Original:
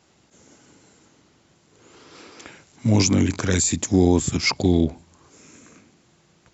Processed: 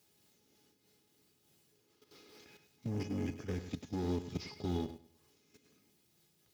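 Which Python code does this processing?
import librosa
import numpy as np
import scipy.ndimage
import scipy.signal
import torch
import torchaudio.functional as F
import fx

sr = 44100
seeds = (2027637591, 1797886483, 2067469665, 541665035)

y = fx.cvsd(x, sr, bps=32000)
y = np.clip(10.0 ** (18.0 / 20.0) * y, -1.0, 1.0) / 10.0 ** (18.0 / 20.0)
y = fx.peak_eq(y, sr, hz=3900.0, db=-13.0, octaves=0.45, at=(2.88, 3.59))
y = fx.quant_dither(y, sr, seeds[0], bits=10, dither='triangular')
y = fx.peak_eq(y, sr, hz=1200.0, db=-8.5, octaves=2.0)
y = fx.comb_fb(y, sr, f0_hz=420.0, decay_s=0.18, harmonics='all', damping=0.0, mix_pct=80)
y = fx.level_steps(y, sr, step_db=12)
y = scipy.signal.sosfilt(scipy.signal.butter(2, 66.0, 'highpass', fs=sr, output='sos'), y)
y = fx.echo_feedback(y, sr, ms=102, feedback_pct=28, wet_db=-11.0)
y = fx.am_noise(y, sr, seeds[1], hz=5.7, depth_pct=60)
y = F.gain(torch.from_numpy(y), 3.0).numpy()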